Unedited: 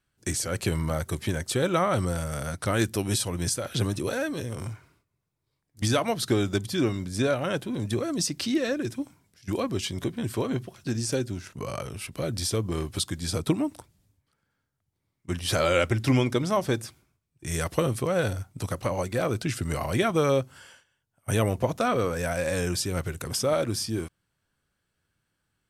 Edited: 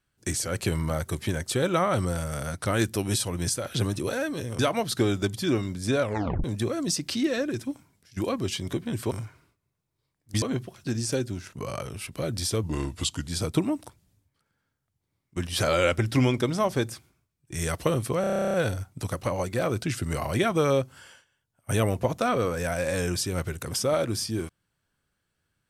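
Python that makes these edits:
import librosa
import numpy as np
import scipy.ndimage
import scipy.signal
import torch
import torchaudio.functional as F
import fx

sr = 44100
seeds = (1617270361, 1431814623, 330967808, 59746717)

y = fx.edit(x, sr, fx.move(start_s=4.59, length_s=1.31, to_s=10.42),
    fx.tape_stop(start_s=7.33, length_s=0.42),
    fx.speed_span(start_s=12.63, length_s=0.57, speed=0.88),
    fx.stutter(start_s=18.13, slice_s=0.03, count=12), tone=tone)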